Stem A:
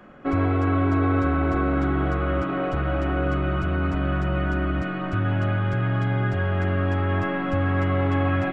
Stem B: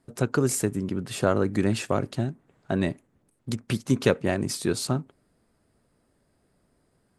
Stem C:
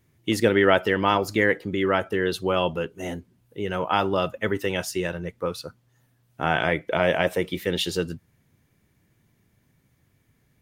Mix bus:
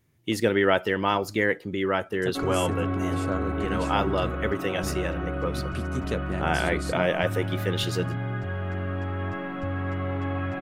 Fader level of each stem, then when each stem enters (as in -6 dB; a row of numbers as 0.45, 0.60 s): -7.0, -9.0, -3.0 dB; 2.10, 2.05, 0.00 s